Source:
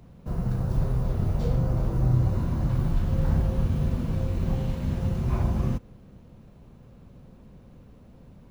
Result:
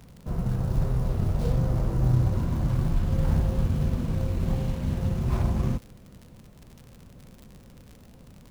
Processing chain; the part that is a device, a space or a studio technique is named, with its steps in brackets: record under a worn stylus (tracing distortion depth 0.16 ms; crackle 77/s -38 dBFS; pink noise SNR 40 dB)

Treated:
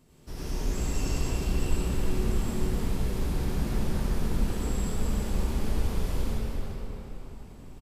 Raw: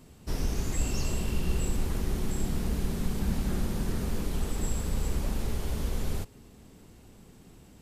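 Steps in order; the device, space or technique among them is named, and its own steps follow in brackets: cave (echo 0.354 s -10 dB; reverb RT60 4.3 s, pre-delay 73 ms, DRR -9 dB); gain -8 dB

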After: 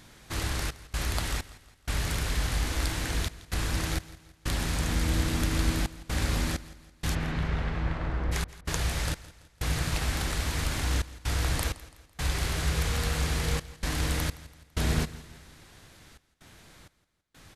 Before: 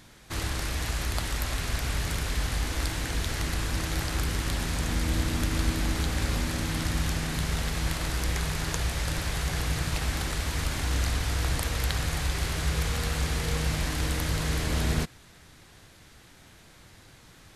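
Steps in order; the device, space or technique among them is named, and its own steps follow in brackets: 7.14–8.31 LPF 2900 Hz -> 1300 Hz 12 dB/oct; trance gate with a delay (step gate "xxx.xx..xxx" 64 bpm -60 dB; feedback echo 0.167 s, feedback 44%, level -18 dB)

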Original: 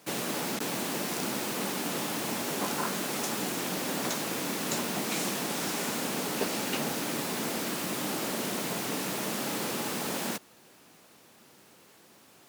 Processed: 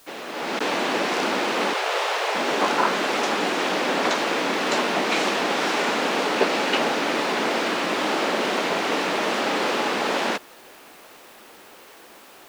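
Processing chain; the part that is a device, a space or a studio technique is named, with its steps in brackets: dictaphone (BPF 370–3400 Hz; AGC gain up to 13 dB; wow and flutter; white noise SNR 29 dB); 1.73–2.35 steep high-pass 410 Hz 48 dB/oct

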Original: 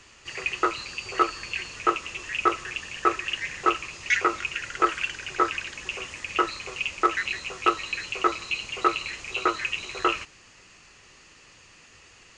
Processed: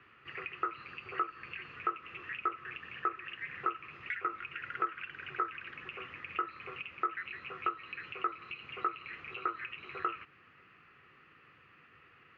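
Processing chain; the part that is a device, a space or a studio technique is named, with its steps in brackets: low shelf 150 Hz -7.5 dB; bass amplifier (compressor 5:1, threshold -30 dBFS, peak gain reduction 13.5 dB; speaker cabinet 80–2400 Hz, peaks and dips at 87 Hz +4 dB, 140 Hz +7 dB, 610 Hz -8 dB, 900 Hz -8 dB, 1300 Hz +7 dB); gain -5 dB

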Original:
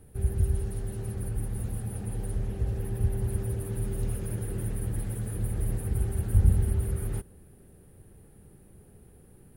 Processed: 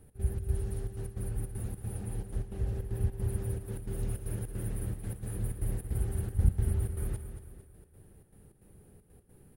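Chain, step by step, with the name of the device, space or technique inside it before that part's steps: trance gate with a delay (step gate "x.xx.xxxx.x.xx" 155 bpm -12 dB; feedback echo 0.226 s, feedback 44%, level -10 dB); gain -3.5 dB

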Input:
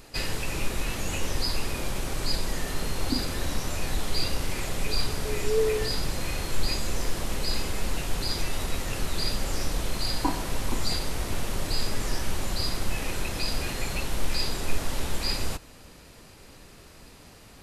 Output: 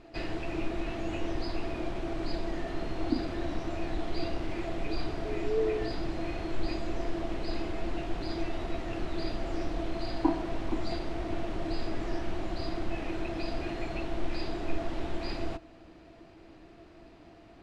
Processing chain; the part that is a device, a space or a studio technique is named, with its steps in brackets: inside a cardboard box (LPF 3100 Hz 12 dB/oct; small resonant body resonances 330/670 Hz, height 17 dB, ringing for 85 ms); gain -6.5 dB

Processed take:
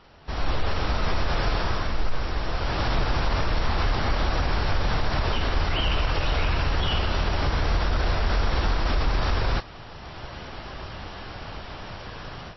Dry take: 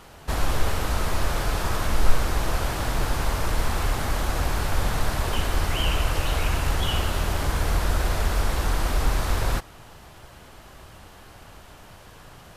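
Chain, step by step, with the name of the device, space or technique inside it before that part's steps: low-bitrate web radio (AGC gain up to 15 dB; limiter -8.5 dBFS, peak gain reduction 7.5 dB; gain -5.5 dB; MP3 24 kbps 16000 Hz)

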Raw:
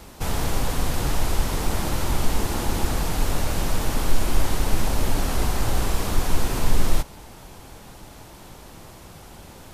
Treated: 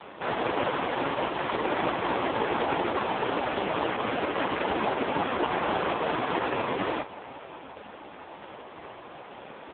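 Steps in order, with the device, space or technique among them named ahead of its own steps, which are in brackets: satellite phone (BPF 330–3100 Hz; echo 0.557 s -20.5 dB; gain +9 dB; AMR-NB 4.75 kbps 8000 Hz)

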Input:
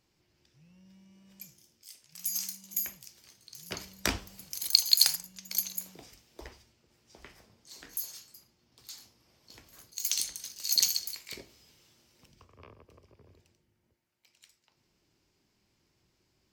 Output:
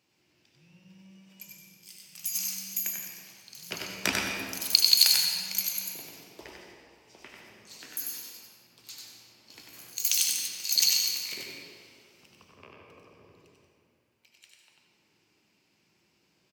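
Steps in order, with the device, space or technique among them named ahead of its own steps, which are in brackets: PA in a hall (HPF 140 Hz 12 dB/oct; bell 2600 Hz +7 dB 0.46 oct; echo 95 ms -4 dB; reverb RT60 2.3 s, pre-delay 71 ms, DRR 1 dB); 9.56–10.48 high shelf 6900 Hz +6 dB

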